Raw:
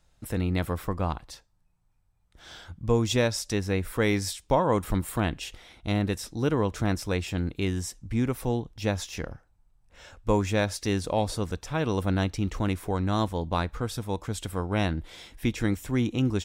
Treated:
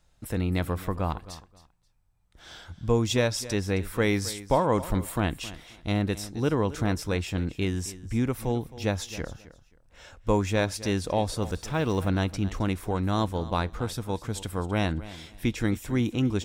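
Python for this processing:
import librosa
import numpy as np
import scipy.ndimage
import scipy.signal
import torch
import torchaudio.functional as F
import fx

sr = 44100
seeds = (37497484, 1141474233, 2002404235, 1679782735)

y = fx.law_mismatch(x, sr, coded='mu', at=(11.42, 12.08))
y = fx.echo_feedback(y, sr, ms=266, feedback_pct=22, wet_db=-16.5)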